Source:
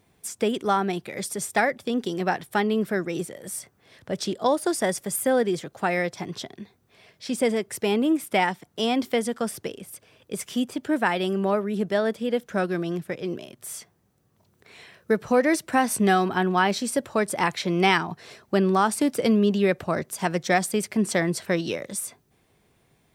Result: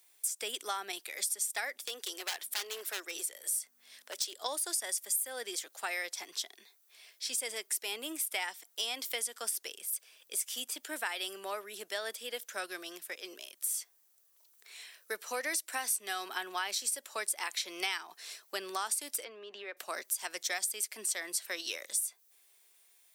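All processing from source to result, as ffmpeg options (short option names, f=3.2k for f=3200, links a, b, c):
-filter_complex "[0:a]asettb=1/sr,asplit=3[a][b][c];[a]atrim=end=1.774[d];[b]atrim=start=1.77:end=4.39,asetpts=PTS-STARTPTS,afade=t=in:d=0.004:c=qsin,afade=t=out:st=2.616:d=0.004:c=qsin,highpass=f=320:w=0.5412,highpass=f=320:w=1.3066,aeval=exprs='val(0)+0.01*(sin(2*PI*50*n/s)+sin(2*PI*2*50*n/s)/2+sin(2*PI*3*50*n/s)/3+sin(2*PI*4*50*n/s)/4+sin(2*PI*5*50*n/s)/5)':c=same,aeval=exprs='0.075*(abs(mod(val(0)/0.075+3,4)-2)-1)':c=same[e];[c]atrim=start=4.386[f];[d][e]acrossfade=d=0.004:c1=hsin:c2=qsin[g];[g][f]acrossfade=d=0.004:c1=qsin:c2=hsin,asettb=1/sr,asplit=3[h][i][j];[h]atrim=end=19.244[k];[i]atrim=start=19.24:end=19.77,asetpts=PTS-STARTPTS,afade=t=in:d=0.004:c=qsin,afade=t=out:st=0.526:d=0.004:c=qsin,highpass=290,lowpass=2.1k,acompressor=threshold=-25dB:ratio=5:attack=3.2:release=140:knee=1:detection=peak[l];[j]atrim=start=19.766[m];[k][l]acrossfade=d=0.004:c1=hsin:c2=qsin[n];[n][m]acrossfade=d=0.004:c1=qsin:c2=hsin,highpass=f=290:w=0.5412,highpass=f=290:w=1.3066,aderivative,acompressor=threshold=-38dB:ratio=4,volume=6.5dB"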